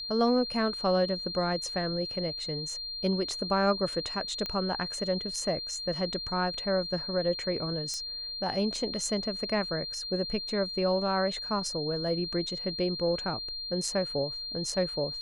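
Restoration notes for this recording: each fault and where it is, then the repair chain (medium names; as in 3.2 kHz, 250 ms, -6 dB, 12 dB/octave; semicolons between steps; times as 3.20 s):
whine 4.2 kHz -35 dBFS
4.46 s: pop -20 dBFS
7.94 s: pop -22 dBFS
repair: de-click; band-stop 4.2 kHz, Q 30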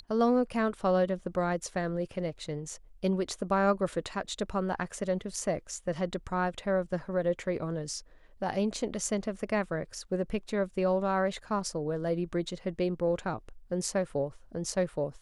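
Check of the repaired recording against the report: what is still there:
nothing left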